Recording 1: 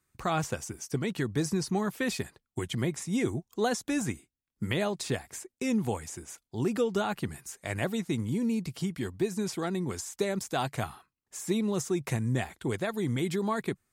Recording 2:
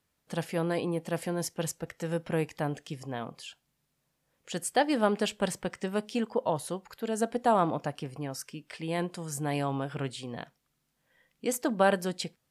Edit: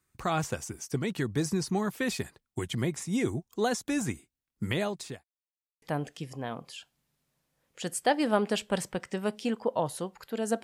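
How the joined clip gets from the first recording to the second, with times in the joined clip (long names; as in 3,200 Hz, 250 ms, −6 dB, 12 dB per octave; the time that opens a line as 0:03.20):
recording 1
0:04.65–0:05.24: fade out equal-power
0:05.24–0:05.82: silence
0:05.82: continue with recording 2 from 0:02.52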